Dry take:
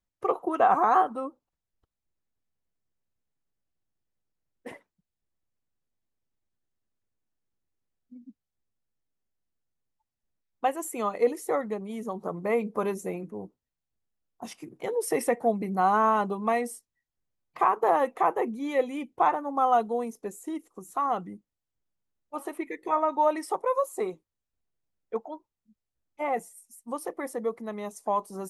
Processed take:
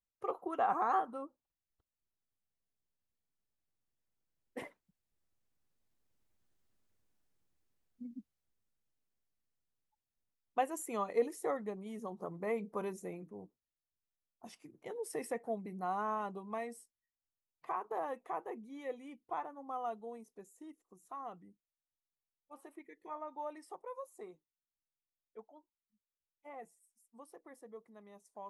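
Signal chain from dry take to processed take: Doppler pass-by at 6.74 s, 7 m/s, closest 6.8 m; trim +5.5 dB

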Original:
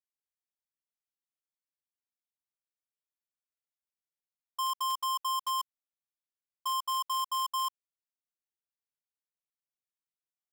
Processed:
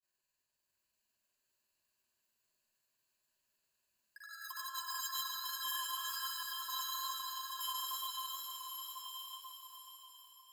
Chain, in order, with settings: peak limiter -36.5 dBFS, peak gain reduction 6.5 dB; feedback echo behind a high-pass 149 ms, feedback 83%, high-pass 1.8 kHz, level -7.5 dB; compressor with a negative ratio -44 dBFS, ratio -0.5; chorus 2.1 Hz, delay 19 ms, depth 5.1 ms; granulator 100 ms, grains 20 per s, pitch spread up and down by 0 st; ever faster or slower copies 662 ms, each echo +4 st, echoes 2; saturation -35.5 dBFS, distortion -26 dB; rippled EQ curve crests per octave 1.4, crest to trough 10 dB; swelling reverb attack 1180 ms, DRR 5.5 dB; trim +6.5 dB

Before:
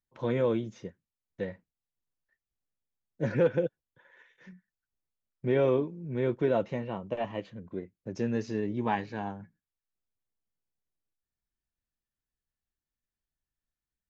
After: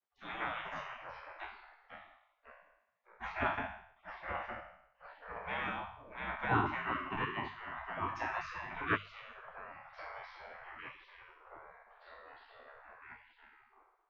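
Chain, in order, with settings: spectral sustain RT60 0.63 s; ever faster or slower copies 236 ms, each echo -3 st, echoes 3, each echo -6 dB; 6.47–8.95 s: high-order bell 670 Hz +12 dB 1.2 oct; spectral gate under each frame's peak -25 dB weak; low-pass 1.9 kHz 12 dB/octave; hum notches 50/100/150/200 Hz; trim +8 dB

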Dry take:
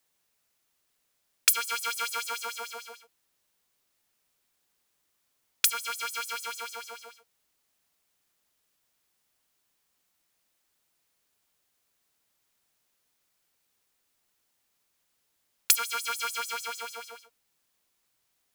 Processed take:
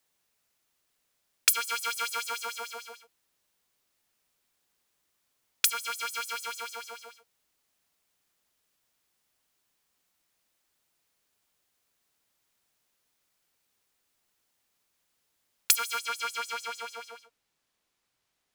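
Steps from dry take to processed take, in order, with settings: treble shelf 8.7 kHz -2 dB, from 15.99 s -12 dB

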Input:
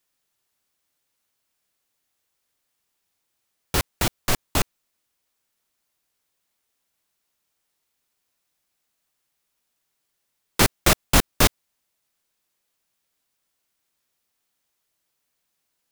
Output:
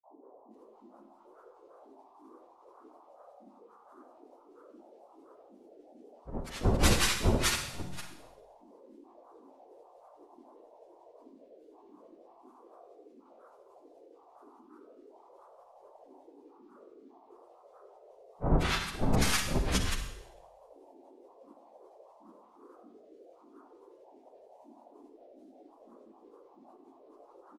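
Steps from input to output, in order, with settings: frequency axis rescaled in octaves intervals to 128%; hum notches 60/120/180/240 Hz; peak limiter -18.5 dBFS, peak gain reduction 11 dB; granulator 218 ms, grains 8.3 per s, spray 219 ms; band noise 710–1200 Hz -63 dBFS; granulator, spray 12 ms, pitch spread up and down by 12 st; bands offset in time lows, highs 110 ms, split 1.7 kHz; Schroeder reverb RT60 0.47 s, combs from 25 ms, DRR 6 dB; speed mistake 78 rpm record played at 45 rpm; trim +8 dB

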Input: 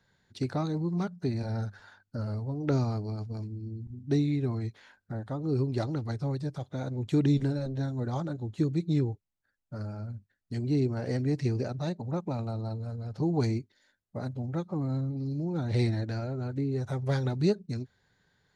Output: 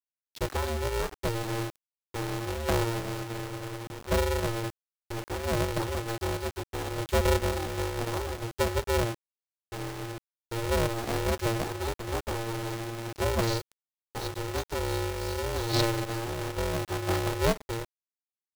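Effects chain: 13.47–15.81 s: resonant high shelf 3.3 kHz +11.5 dB, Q 3; bit crusher 7-bit; polarity switched at an audio rate 230 Hz

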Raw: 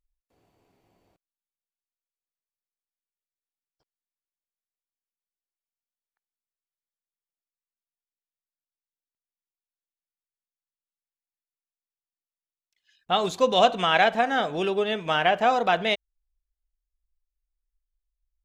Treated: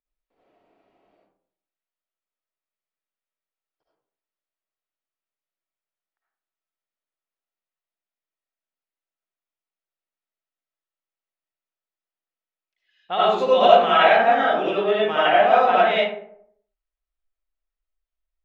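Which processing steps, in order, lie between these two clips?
three-band isolator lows -15 dB, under 210 Hz, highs -21 dB, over 3.8 kHz; algorithmic reverb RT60 0.67 s, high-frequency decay 0.45×, pre-delay 35 ms, DRR -8 dB; trim -3.5 dB

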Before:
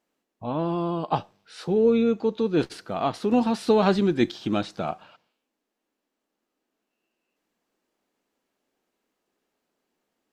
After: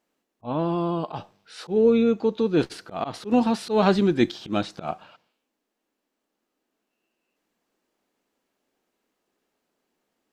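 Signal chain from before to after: slow attack 103 ms; trim +1.5 dB

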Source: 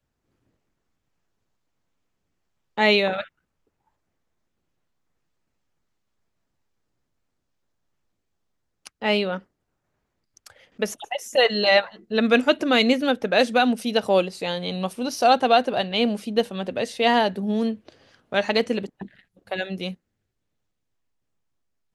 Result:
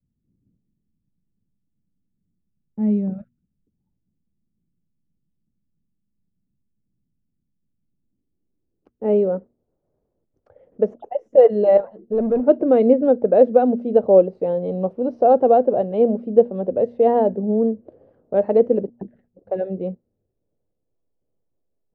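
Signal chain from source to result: de-hum 118.9 Hz, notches 2; 11.77–12.43 s: hard clipper -22.5 dBFS, distortion -16 dB; low-pass sweep 200 Hz -> 520 Hz, 7.73–9.37 s; trim +1.5 dB

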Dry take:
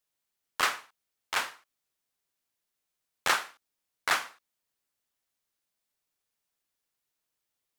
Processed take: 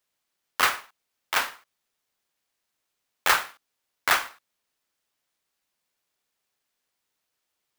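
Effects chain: high-pass 300 Hz 6 dB/octave; sampling jitter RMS 0.024 ms; trim +5.5 dB

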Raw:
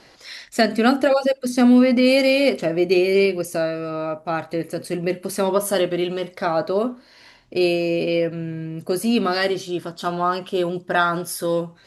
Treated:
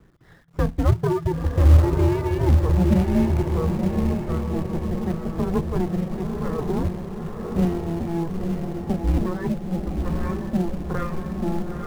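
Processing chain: comb filter that takes the minimum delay 0.54 ms; low-pass 1 kHz 12 dB/octave; bass shelf 390 Hz +7.5 dB; feedback comb 130 Hz, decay 1.3 s, harmonics all, mix 40%; reverb removal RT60 0.8 s; frequency shift -170 Hz; echo that smears into a reverb 942 ms, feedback 54%, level -3.5 dB; in parallel at -8 dB: companded quantiser 4-bit; on the sum: trim -2.5 dB

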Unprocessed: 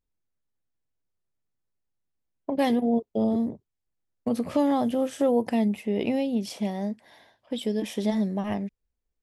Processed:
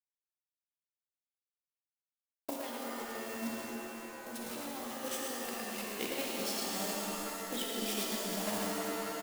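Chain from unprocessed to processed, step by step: send-on-delta sampling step -37 dBFS; de-hum 54.48 Hz, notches 28; compressor with a negative ratio -29 dBFS, ratio -1; delay 110 ms -5 dB; level held to a coarse grid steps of 9 dB; tilt EQ +3 dB/octave; pitch-shifted reverb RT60 3.2 s, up +7 st, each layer -2 dB, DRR -1.5 dB; trim -7 dB

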